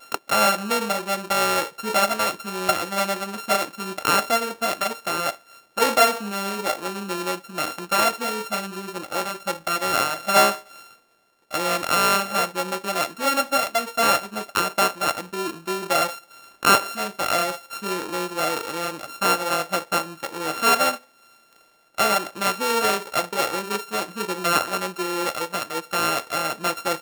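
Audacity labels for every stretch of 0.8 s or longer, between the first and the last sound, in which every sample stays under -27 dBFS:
10.550000	11.530000	silence
20.950000	21.980000	silence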